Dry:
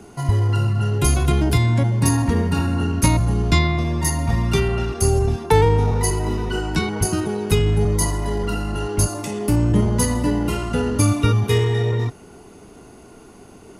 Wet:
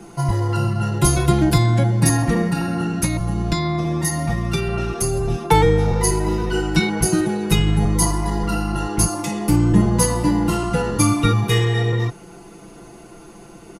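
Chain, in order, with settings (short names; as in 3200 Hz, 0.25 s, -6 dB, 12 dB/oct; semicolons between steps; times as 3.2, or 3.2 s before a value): comb 5.9 ms, depth 100%; 2.48–5.3 compressor, threshold -17 dBFS, peak gain reduction 9 dB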